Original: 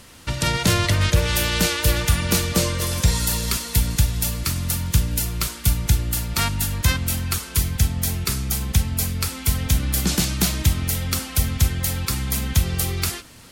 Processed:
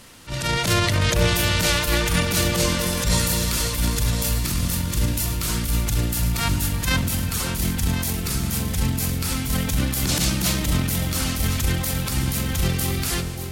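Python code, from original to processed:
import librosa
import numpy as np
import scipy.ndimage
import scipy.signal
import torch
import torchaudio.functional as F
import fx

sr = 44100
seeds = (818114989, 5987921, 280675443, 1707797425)

y = fx.peak_eq(x, sr, hz=73.0, db=-12.5, octaves=0.24)
y = fx.transient(y, sr, attack_db=-11, sustain_db=7)
y = fx.echo_alternate(y, sr, ms=529, hz=840.0, feedback_pct=57, wet_db=-5.0)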